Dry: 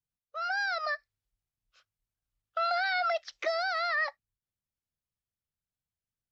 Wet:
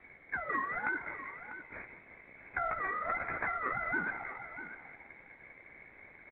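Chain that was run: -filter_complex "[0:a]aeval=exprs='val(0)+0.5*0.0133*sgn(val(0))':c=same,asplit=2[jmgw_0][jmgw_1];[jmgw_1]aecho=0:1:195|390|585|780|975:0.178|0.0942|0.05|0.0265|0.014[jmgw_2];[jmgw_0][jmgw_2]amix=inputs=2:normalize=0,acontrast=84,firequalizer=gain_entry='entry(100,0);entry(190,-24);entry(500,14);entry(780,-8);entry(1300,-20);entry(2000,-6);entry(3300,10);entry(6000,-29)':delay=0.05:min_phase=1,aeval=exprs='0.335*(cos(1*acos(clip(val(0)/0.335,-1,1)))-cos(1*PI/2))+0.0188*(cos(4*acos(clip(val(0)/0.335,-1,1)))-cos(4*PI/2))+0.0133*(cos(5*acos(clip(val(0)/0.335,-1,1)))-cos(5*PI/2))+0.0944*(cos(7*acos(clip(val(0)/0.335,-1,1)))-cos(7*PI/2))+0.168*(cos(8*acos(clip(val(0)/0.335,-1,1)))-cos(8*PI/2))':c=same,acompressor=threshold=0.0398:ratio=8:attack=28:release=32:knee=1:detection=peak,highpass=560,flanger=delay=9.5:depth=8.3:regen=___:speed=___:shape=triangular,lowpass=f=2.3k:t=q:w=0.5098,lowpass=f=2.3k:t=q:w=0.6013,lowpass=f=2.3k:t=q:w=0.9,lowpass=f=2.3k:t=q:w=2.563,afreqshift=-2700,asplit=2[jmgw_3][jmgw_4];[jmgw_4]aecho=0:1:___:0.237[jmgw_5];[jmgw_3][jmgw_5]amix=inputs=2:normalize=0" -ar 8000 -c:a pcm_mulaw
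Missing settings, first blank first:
-22, 1.6, 646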